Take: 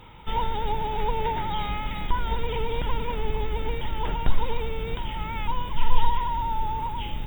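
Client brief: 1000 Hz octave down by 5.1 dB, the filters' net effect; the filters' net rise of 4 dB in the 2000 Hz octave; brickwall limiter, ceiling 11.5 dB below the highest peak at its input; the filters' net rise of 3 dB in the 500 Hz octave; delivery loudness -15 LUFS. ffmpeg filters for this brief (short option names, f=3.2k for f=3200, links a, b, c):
-af "equalizer=f=500:t=o:g=4.5,equalizer=f=1k:t=o:g=-8,equalizer=f=2k:t=o:g=6.5,volume=16dB,alimiter=limit=-0.5dB:level=0:latency=1"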